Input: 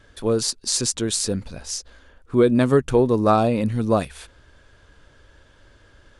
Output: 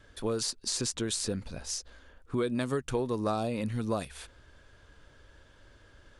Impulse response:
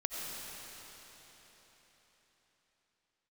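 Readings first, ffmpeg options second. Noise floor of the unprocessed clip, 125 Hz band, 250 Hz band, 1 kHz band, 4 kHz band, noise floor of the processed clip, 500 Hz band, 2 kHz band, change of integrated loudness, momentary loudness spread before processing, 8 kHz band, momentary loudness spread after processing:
-55 dBFS, -11.0 dB, -12.0 dB, -13.0 dB, -8.0 dB, -59 dBFS, -13.0 dB, -8.5 dB, -11.5 dB, 13 LU, -9.0 dB, 7 LU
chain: -filter_complex "[0:a]acrossover=split=890|3600[a][b][c];[a]acompressor=threshold=-25dB:ratio=4[d];[b]acompressor=threshold=-34dB:ratio=4[e];[c]acompressor=threshold=-28dB:ratio=4[f];[d][e][f]amix=inputs=3:normalize=0,volume=-4.5dB"

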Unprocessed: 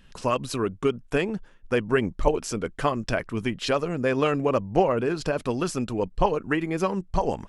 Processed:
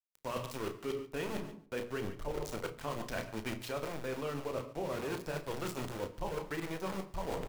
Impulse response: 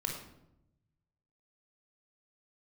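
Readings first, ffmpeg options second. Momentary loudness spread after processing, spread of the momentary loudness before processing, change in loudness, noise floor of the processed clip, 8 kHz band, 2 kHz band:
2 LU, 5 LU, -13.5 dB, -58 dBFS, -10.0 dB, -12.0 dB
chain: -filter_complex "[0:a]flanger=delay=5.9:depth=8.3:regen=-60:speed=1.5:shape=sinusoidal,aeval=exprs='val(0)*gte(abs(val(0)),0.0299)':c=same,bandreject=f=60:t=h:w=6,bandreject=f=120:t=h:w=6,bandreject=f=180:t=h:w=6,bandreject=f=240:t=h:w=6,bandreject=f=300:t=h:w=6,bandreject=f=360:t=h:w=6,bandreject=f=420:t=h:w=6,bandreject=f=480:t=h:w=6,aecho=1:1:145|290:0.112|0.0281,asplit=2[a][b];[1:a]atrim=start_sample=2205[c];[b][c]afir=irnorm=-1:irlink=0,volume=-11dB[d];[a][d]amix=inputs=2:normalize=0,acrossover=split=450[e][f];[f]acompressor=threshold=-26dB:ratio=6[g];[e][g]amix=inputs=2:normalize=0,asplit=2[h][i];[i]adelay=33,volume=-11dB[j];[h][j]amix=inputs=2:normalize=0,areverse,acompressor=threshold=-34dB:ratio=12,areverse"

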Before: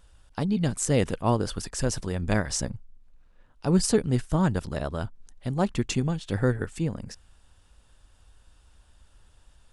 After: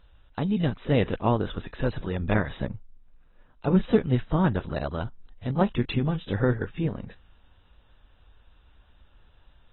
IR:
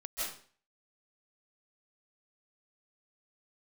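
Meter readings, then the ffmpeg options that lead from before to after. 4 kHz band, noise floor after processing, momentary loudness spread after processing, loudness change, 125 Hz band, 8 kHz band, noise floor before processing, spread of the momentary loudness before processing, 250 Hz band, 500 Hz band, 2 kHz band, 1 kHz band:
-4.0 dB, -59 dBFS, 12 LU, 0.0 dB, +0.5 dB, under -40 dB, -60 dBFS, 12 LU, +0.5 dB, +1.0 dB, +1.0 dB, +1.0 dB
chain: -ar 24000 -c:a aac -b:a 16k

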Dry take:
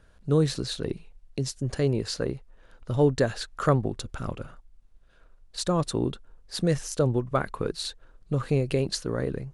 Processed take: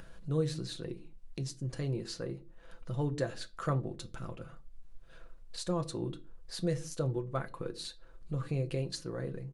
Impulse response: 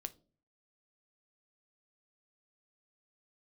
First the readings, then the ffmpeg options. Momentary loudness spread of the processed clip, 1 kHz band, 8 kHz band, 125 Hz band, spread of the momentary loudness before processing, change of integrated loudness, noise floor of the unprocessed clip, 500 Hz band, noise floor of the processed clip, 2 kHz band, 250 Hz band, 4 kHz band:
13 LU, -10.0 dB, -9.5 dB, -7.5 dB, 13 LU, -9.0 dB, -57 dBFS, -10.5 dB, -54 dBFS, -10.0 dB, -9.5 dB, -9.5 dB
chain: -filter_complex "[0:a]aecho=1:1:6:0.49,acompressor=mode=upward:threshold=-26dB:ratio=2.5[a];[1:a]atrim=start_sample=2205,afade=t=out:st=0.28:d=0.01,atrim=end_sample=12789[b];[a][b]afir=irnorm=-1:irlink=0,volume=-8dB"

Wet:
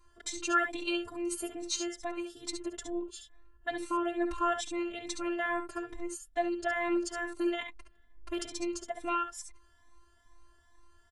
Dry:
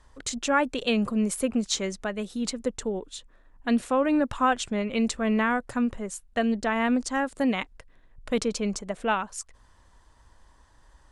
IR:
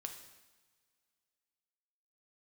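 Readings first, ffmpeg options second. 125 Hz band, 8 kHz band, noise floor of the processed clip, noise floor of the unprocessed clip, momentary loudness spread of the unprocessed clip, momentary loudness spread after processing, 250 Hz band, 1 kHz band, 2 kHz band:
under -20 dB, -5.5 dB, -63 dBFS, -59 dBFS, 10 LU, 10 LU, -9.5 dB, -6.0 dB, -5.0 dB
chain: -filter_complex "[0:a]afftfilt=real='hypot(re,im)*cos(PI*b)':imag='0':win_size=512:overlap=0.75,aecho=1:1:58|69:0.158|0.422,asplit=2[a][b];[b]adelay=3.3,afreqshift=2.3[c];[a][c]amix=inputs=2:normalize=1"

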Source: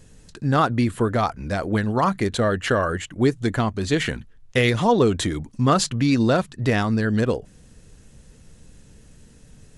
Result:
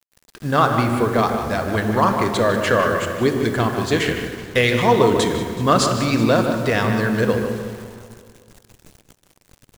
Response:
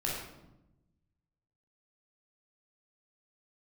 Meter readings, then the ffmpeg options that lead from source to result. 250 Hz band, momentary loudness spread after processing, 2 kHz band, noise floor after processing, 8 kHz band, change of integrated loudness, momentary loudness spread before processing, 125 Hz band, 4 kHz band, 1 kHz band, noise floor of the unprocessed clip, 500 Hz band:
+1.5 dB, 7 LU, +4.5 dB, -61 dBFS, +2.5 dB, +3.0 dB, 7 LU, +0.5 dB, +3.5 dB, +4.5 dB, -50 dBFS, +4.5 dB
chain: -filter_complex "[0:a]lowshelf=f=190:g=-8,asplit=2[a][b];[1:a]atrim=start_sample=2205,asetrate=26901,aresample=44100,lowpass=8.7k[c];[b][c]afir=irnorm=-1:irlink=0,volume=-12.5dB[d];[a][d]amix=inputs=2:normalize=0,acrusher=bits=6:mix=0:aa=0.000001,asplit=2[e][f];[f]adelay=152,lowpass=f=2.5k:p=1,volume=-7dB,asplit=2[g][h];[h]adelay=152,lowpass=f=2.5k:p=1,volume=0.47,asplit=2[i][j];[j]adelay=152,lowpass=f=2.5k:p=1,volume=0.47,asplit=2[k][l];[l]adelay=152,lowpass=f=2.5k:p=1,volume=0.47,asplit=2[m][n];[n]adelay=152,lowpass=f=2.5k:p=1,volume=0.47,asplit=2[o][p];[p]adelay=152,lowpass=f=2.5k:p=1,volume=0.47[q];[g][i][k][m][o][q]amix=inputs=6:normalize=0[r];[e][r]amix=inputs=2:normalize=0,aeval=exprs='sgn(val(0))*max(abs(val(0))-0.00794,0)':c=same,aecho=1:1:188|376|564|752|940|1128:0.178|0.107|0.064|0.0384|0.023|0.0138,volume=1.5dB"

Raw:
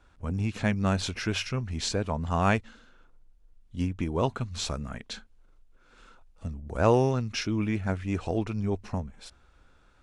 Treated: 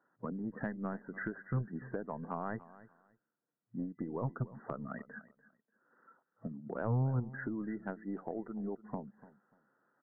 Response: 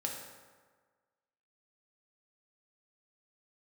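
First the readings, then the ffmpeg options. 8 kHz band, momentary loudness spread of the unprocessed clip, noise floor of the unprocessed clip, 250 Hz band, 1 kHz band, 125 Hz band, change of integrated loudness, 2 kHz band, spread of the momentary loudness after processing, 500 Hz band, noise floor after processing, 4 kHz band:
under -40 dB, 14 LU, -60 dBFS, -9.0 dB, -12.0 dB, -8.5 dB, -10.5 dB, -10.5 dB, 12 LU, -12.5 dB, under -85 dBFS, under -40 dB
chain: -filter_complex "[0:a]afftdn=nr=14:nf=-39,afftfilt=real='re*between(b*sr/4096,110,2000)':imag='im*between(b*sr/4096,110,2000)':win_size=4096:overlap=0.75,acrossover=split=140[a][b];[a]aeval=exprs='0.0376*(cos(1*acos(clip(val(0)/0.0376,-1,1)))-cos(1*PI/2))+0.0119*(cos(3*acos(clip(val(0)/0.0376,-1,1)))-cos(3*PI/2))+0.00106*(cos(5*acos(clip(val(0)/0.0376,-1,1)))-cos(5*PI/2))+0.00119*(cos(6*acos(clip(val(0)/0.0376,-1,1)))-cos(6*PI/2))+0.00188*(cos(7*acos(clip(val(0)/0.0376,-1,1)))-cos(7*PI/2))':c=same[c];[b]acompressor=threshold=-41dB:ratio=6[d];[c][d]amix=inputs=2:normalize=0,aecho=1:1:293|586:0.126|0.0264,volume=4dB"

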